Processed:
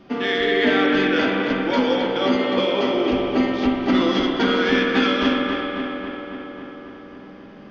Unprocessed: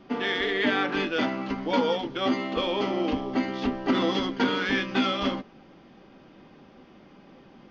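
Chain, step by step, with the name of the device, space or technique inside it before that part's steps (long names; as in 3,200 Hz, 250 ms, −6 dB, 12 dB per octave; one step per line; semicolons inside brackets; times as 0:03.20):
dub delay into a spring reverb (feedback echo with a low-pass in the loop 272 ms, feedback 72%, low-pass 3,800 Hz, level −7 dB; spring reverb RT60 2.9 s, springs 47 ms, chirp 35 ms, DRR 1.5 dB)
0:02.35–0:02.95: high-pass filter 99 Hz
parametric band 880 Hz −3 dB 0.47 octaves
level +3.5 dB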